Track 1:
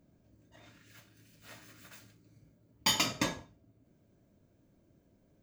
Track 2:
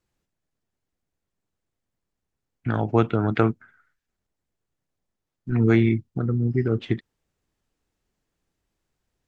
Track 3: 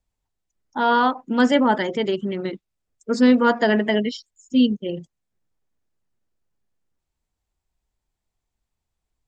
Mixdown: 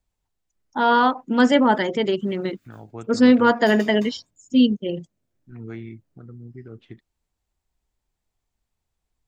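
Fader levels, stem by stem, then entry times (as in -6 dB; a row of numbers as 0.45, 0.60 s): -13.5, -17.5, +1.0 dB; 0.80, 0.00, 0.00 s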